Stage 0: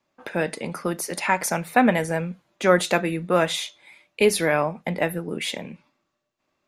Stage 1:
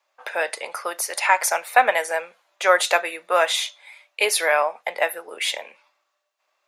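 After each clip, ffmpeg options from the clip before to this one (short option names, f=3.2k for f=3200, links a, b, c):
-af "highpass=f=590:w=0.5412,highpass=f=590:w=1.3066,volume=4.5dB"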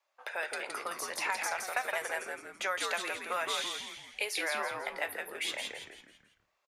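-filter_complex "[0:a]acrossover=split=1000|5800[a][b][c];[a]acompressor=threshold=-34dB:ratio=4[d];[b]acompressor=threshold=-25dB:ratio=4[e];[c]acompressor=threshold=-36dB:ratio=4[f];[d][e][f]amix=inputs=3:normalize=0,asplit=6[g][h][i][j][k][l];[h]adelay=166,afreqshift=-100,volume=-4dB[m];[i]adelay=332,afreqshift=-200,volume=-11.5dB[n];[j]adelay=498,afreqshift=-300,volume=-19.1dB[o];[k]adelay=664,afreqshift=-400,volume=-26.6dB[p];[l]adelay=830,afreqshift=-500,volume=-34.1dB[q];[g][m][n][o][p][q]amix=inputs=6:normalize=0,volume=-8dB"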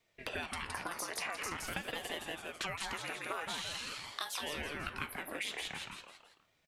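-af "acompressor=threshold=-41dB:ratio=6,aeval=exprs='val(0)*sin(2*PI*680*n/s+680*0.85/0.46*sin(2*PI*0.46*n/s))':c=same,volume=7dB"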